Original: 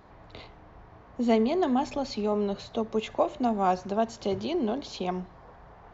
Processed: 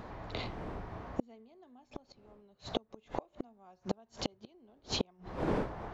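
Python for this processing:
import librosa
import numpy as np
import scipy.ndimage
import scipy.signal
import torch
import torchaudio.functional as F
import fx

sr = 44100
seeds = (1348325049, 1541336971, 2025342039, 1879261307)

y = fx.dmg_wind(x, sr, seeds[0], corner_hz=520.0, level_db=-42.0)
y = fx.gate_flip(y, sr, shuts_db=-24.0, range_db=-39)
y = F.gain(torch.from_numpy(y), 6.0).numpy()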